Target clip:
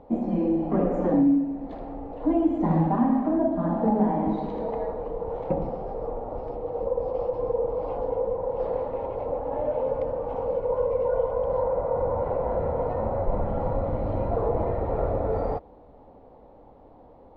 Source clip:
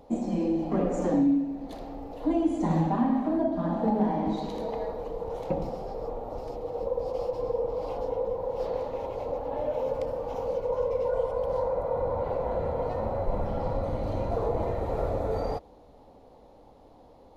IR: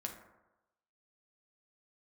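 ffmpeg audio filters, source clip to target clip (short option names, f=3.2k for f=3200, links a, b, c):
-af "lowpass=1.8k,volume=3dB"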